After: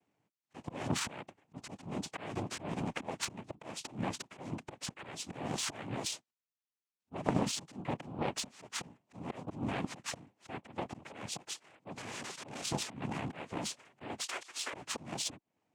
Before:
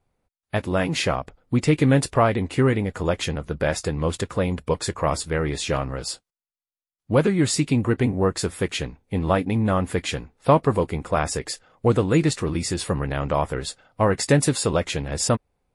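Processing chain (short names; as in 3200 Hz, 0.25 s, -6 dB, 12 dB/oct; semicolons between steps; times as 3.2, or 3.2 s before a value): 14.2–14.73 elliptic high-pass 710 Hz, stop band 40 dB; compressor 20:1, threshold -22 dBFS, peak gain reduction 12.5 dB; auto swell 0.318 s; limiter -23.5 dBFS, peak gain reduction 10.5 dB; 11.95–12.64 wrapped overs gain 34 dB; noise vocoder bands 4; added harmonics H 3 -14 dB, 7 -43 dB, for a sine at -16 dBFS; gain +5.5 dB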